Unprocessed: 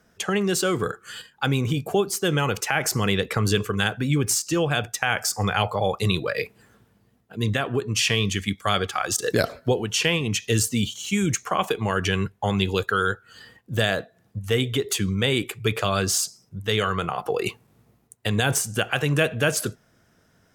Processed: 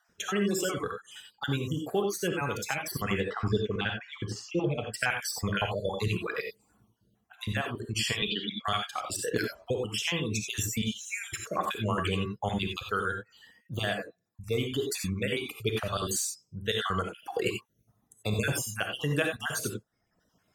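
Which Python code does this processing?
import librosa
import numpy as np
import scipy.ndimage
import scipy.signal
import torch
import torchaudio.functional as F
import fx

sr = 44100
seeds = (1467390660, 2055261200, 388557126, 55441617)

y = fx.spec_dropout(x, sr, seeds[0], share_pct=45)
y = fx.cabinet(y, sr, low_hz=170.0, low_slope=24, high_hz=4100.0, hz=(510.0, 1700.0, 2500.0, 3600.0), db=(8, -7, 8, 10), at=(8.22, 8.65))
y = fx.dereverb_blind(y, sr, rt60_s=0.79)
y = fx.air_absorb(y, sr, metres=220.0, at=(3.19, 4.87), fade=0.02)
y = fx.rev_gated(y, sr, seeds[1], gate_ms=110, shape='rising', drr_db=3.5)
y = fx.rider(y, sr, range_db=10, speed_s=2.0)
y = y * librosa.db_to_amplitude(-6.0)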